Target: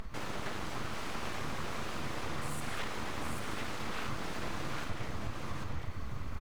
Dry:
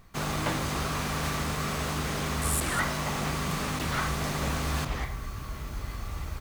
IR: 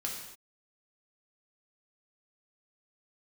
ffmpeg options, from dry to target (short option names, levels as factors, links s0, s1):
-filter_complex "[0:a]acompressor=mode=upward:threshold=0.0178:ratio=2.5,lowshelf=f=93:g=6.5,aecho=1:1:4.6:0.49,aecho=1:1:792:0.596,asplit=2[s0][s1];[1:a]atrim=start_sample=2205[s2];[s1][s2]afir=irnorm=-1:irlink=0,volume=0.501[s3];[s0][s3]amix=inputs=2:normalize=0,acompressor=threshold=0.0141:ratio=2,aemphasis=mode=reproduction:type=50kf,aeval=exprs='abs(val(0))':c=same,volume=0.794"